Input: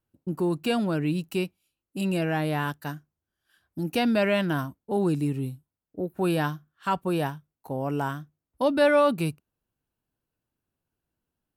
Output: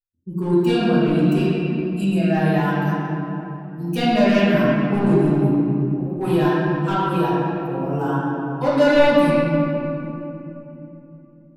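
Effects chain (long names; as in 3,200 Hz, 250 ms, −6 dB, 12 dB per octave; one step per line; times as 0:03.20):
spectral dynamics exaggerated over time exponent 1.5
hard clipping −22 dBFS, distortion −12 dB
convolution reverb RT60 3.2 s, pre-delay 5 ms, DRR −10 dB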